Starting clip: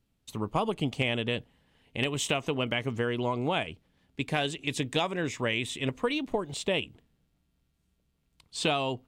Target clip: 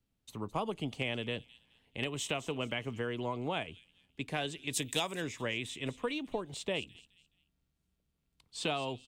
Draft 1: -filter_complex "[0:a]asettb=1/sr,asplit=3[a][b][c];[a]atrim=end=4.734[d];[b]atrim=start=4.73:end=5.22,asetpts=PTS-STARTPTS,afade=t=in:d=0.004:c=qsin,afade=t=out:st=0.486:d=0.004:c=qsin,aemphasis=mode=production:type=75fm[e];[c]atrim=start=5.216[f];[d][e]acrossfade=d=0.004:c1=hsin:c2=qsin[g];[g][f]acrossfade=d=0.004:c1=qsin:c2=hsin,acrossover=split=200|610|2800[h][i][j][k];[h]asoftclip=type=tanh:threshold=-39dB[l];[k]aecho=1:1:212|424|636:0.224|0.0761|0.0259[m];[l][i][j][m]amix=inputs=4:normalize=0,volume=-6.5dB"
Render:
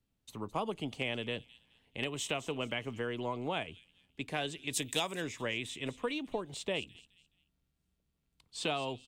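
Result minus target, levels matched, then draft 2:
soft clip: distortion +9 dB
-filter_complex "[0:a]asettb=1/sr,asplit=3[a][b][c];[a]atrim=end=4.734[d];[b]atrim=start=4.73:end=5.22,asetpts=PTS-STARTPTS,afade=t=in:d=0.004:c=qsin,afade=t=out:st=0.486:d=0.004:c=qsin,aemphasis=mode=production:type=75fm[e];[c]atrim=start=5.216[f];[d][e]acrossfade=d=0.004:c1=hsin:c2=qsin[g];[g][f]acrossfade=d=0.004:c1=qsin:c2=hsin,acrossover=split=200|610|2800[h][i][j][k];[h]asoftclip=type=tanh:threshold=-30.5dB[l];[k]aecho=1:1:212|424|636:0.224|0.0761|0.0259[m];[l][i][j][m]amix=inputs=4:normalize=0,volume=-6.5dB"

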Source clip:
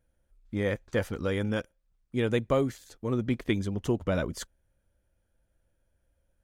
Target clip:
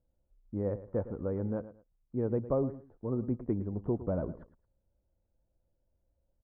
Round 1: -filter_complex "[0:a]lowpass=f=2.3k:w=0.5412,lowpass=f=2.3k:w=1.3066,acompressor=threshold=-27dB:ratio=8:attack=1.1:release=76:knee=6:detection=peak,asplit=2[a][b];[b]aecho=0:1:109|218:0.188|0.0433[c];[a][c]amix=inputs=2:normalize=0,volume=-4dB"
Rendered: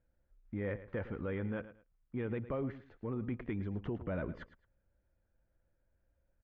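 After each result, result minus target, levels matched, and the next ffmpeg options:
2000 Hz band +17.5 dB; compressor: peak gain reduction +10 dB
-filter_complex "[0:a]lowpass=f=980:w=0.5412,lowpass=f=980:w=1.3066,acompressor=threshold=-27dB:ratio=8:attack=1.1:release=76:knee=6:detection=peak,asplit=2[a][b];[b]aecho=0:1:109|218:0.188|0.0433[c];[a][c]amix=inputs=2:normalize=0,volume=-4dB"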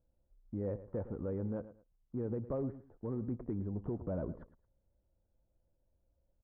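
compressor: peak gain reduction +9.5 dB
-filter_complex "[0:a]lowpass=f=980:w=0.5412,lowpass=f=980:w=1.3066,asplit=2[a][b];[b]aecho=0:1:109|218:0.188|0.0433[c];[a][c]amix=inputs=2:normalize=0,volume=-4dB"

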